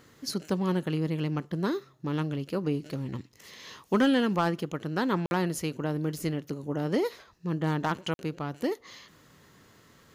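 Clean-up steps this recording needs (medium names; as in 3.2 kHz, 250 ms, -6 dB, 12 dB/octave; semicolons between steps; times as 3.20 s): clip repair -16.5 dBFS; interpolate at 5.26/8.14 s, 51 ms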